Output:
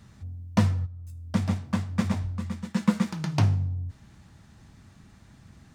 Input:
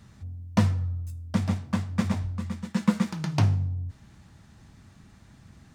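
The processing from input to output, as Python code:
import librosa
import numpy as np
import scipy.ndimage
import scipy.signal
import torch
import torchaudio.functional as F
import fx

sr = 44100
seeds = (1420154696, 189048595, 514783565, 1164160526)

y = fx.level_steps(x, sr, step_db=20, at=(0.85, 1.26), fade=0.02)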